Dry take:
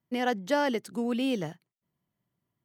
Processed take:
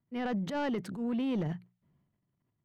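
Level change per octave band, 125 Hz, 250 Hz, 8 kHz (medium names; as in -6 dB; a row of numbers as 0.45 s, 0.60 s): +5.0 dB, -2.0 dB, under -10 dB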